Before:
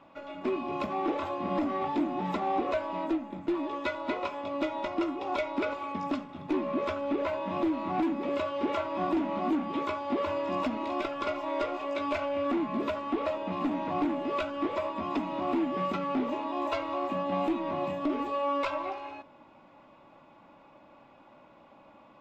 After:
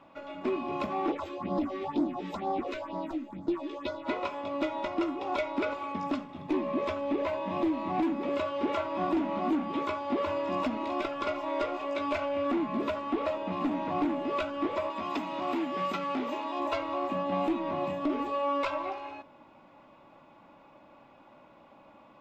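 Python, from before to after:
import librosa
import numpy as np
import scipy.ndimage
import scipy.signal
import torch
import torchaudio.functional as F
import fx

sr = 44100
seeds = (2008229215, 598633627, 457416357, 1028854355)

y = fx.phaser_stages(x, sr, stages=4, low_hz=120.0, high_hz=2600.0, hz=2.1, feedback_pct=25, at=(1.11, 4.05), fade=0.02)
y = fx.notch(y, sr, hz=1400.0, q=7.8, at=(6.27, 8.03))
y = fx.tilt_eq(y, sr, slope=2.0, at=(14.9, 16.6))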